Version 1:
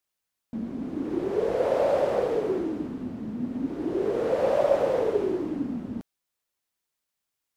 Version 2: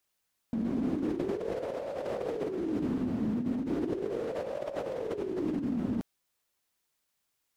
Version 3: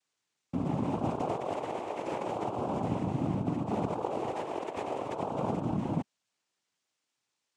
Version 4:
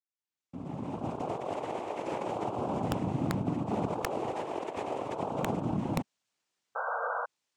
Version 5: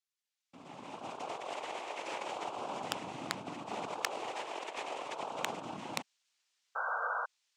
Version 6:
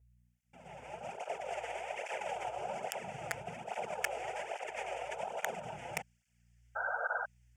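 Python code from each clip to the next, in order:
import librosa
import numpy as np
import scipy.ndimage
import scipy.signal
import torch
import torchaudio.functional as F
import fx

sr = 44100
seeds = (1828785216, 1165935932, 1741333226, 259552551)

y1 = fx.dynamic_eq(x, sr, hz=850.0, q=0.77, threshold_db=-37.0, ratio=4.0, max_db=-4)
y1 = fx.over_compress(y1, sr, threshold_db=-33.0, ratio=-1.0)
y2 = fx.noise_vocoder(y1, sr, seeds[0], bands=4)
y3 = fx.fade_in_head(y2, sr, length_s=1.71)
y3 = (np.mod(10.0 ** (19.5 / 20.0) * y3 + 1.0, 2.0) - 1.0) / 10.0 ** (19.5 / 20.0)
y3 = fx.spec_paint(y3, sr, seeds[1], shape='noise', start_s=6.75, length_s=0.51, low_hz=450.0, high_hz=1600.0, level_db=-33.0)
y4 = fx.bandpass_q(y3, sr, hz=4200.0, q=0.61)
y4 = F.gain(torch.from_numpy(y4), 6.0).numpy()
y5 = fx.add_hum(y4, sr, base_hz=60, snr_db=27)
y5 = fx.fixed_phaser(y5, sr, hz=1100.0, stages=6)
y5 = fx.flanger_cancel(y5, sr, hz=1.2, depth_ms=5.4)
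y5 = F.gain(torch.from_numpy(y5), 6.0).numpy()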